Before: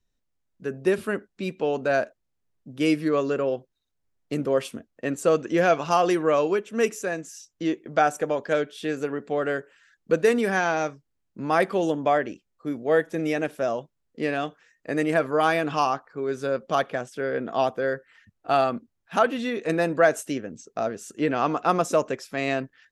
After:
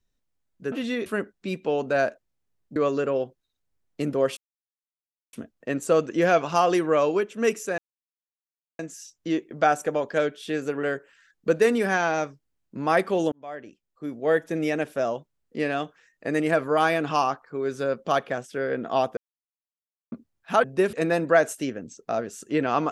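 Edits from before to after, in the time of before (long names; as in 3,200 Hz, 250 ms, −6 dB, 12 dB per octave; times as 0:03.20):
0:00.72–0:01.01: swap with 0:19.27–0:19.61
0:02.71–0:03.08: remove
0:04.69: splice in silence 0.96 s
0:07.14: splice in silence 1.01 s
0:09.18–0:09.46: remove
0:11.95–0:13.06: fade in
0:17.80–0:18.75: silence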